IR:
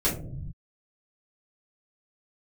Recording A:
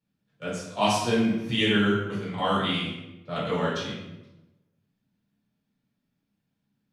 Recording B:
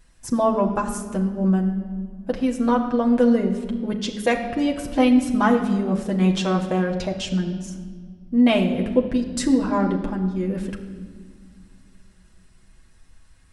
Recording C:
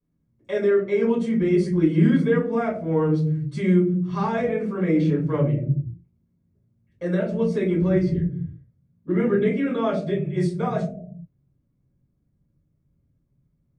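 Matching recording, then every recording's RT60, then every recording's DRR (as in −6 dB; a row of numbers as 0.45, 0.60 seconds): C; 0.95, 1.7, 0.65 seconds; −8.0, 0.0, −8.0 decibels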